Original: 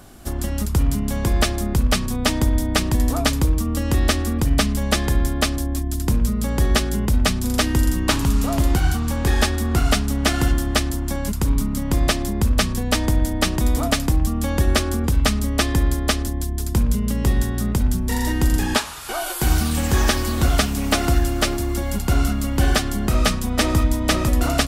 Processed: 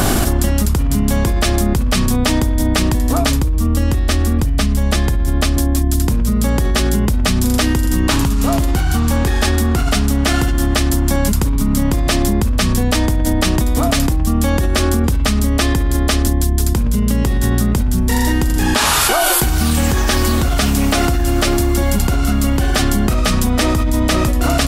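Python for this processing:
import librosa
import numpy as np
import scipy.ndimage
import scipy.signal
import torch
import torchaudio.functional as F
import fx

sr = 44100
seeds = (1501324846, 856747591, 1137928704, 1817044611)

y = fx.low_shelf(x, sr, hz=97.0, db=7.5, at=(3.37, 5.57))
y = fx.env_flatten(y, sr, amount_pct=100)
y = y * 10.0 ** (-6.0 / 20.0)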